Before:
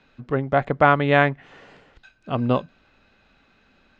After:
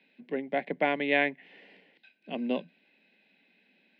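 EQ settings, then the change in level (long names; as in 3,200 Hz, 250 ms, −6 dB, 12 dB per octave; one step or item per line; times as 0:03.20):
Butterworth high-pass 170 Hz 72 dB per octave
parametric band 2,100 Hz +8.5 dB 0.77 octaves
phaser with its sweep stopped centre 3,000 Hz, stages 4
−7.0 dB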